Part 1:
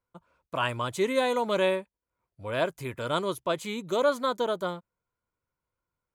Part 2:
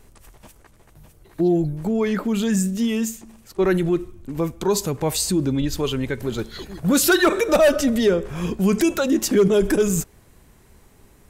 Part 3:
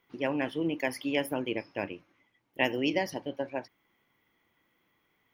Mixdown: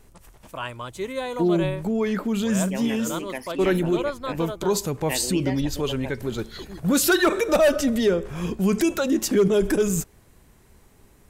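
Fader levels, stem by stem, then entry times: −4.0, −2.5, −3.0 decibels; 0.00, 0.00, 2.50 seconds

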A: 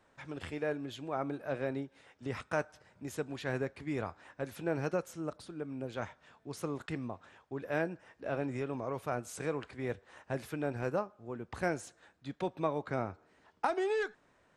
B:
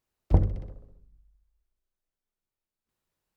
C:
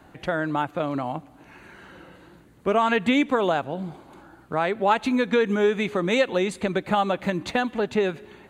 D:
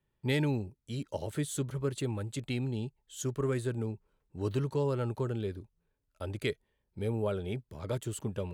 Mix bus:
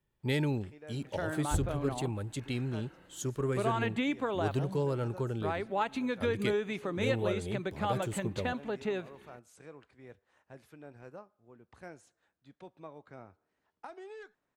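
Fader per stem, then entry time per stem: −15.0, −11.5, −11.0, −1.0 decibels; 0.20, 1.20, 0.90, 0.00 seconds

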